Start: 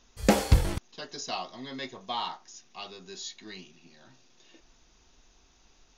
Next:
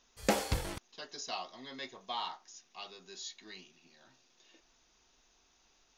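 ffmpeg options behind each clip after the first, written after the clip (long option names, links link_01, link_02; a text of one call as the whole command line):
ffmpeg -i in.wav -af "lowshelf=frequency=250:gain=-10.5,volume=-4.5dB" out.wav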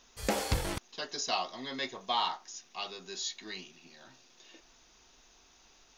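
ffmpeg -i in.wav -af "alimiter=level_in=0.5dB:limit=-24dB:level=0:latency=1:release=311,volume=-0.5dB,volume=7.5dB" out.wav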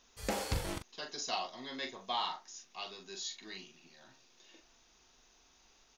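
ffmpeg -i in.wav -filter_complex "[0:a]asplit=2[link_01][link_02];[link_02]adelay=41,volume=-7.5dB[link_03];[link_01][link_03]amix=inputs=2:normalize=0,volume=-5dB" out.wav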